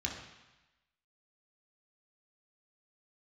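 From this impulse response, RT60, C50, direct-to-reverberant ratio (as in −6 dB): 1.0 s, 4.5 dB, −1.5 dB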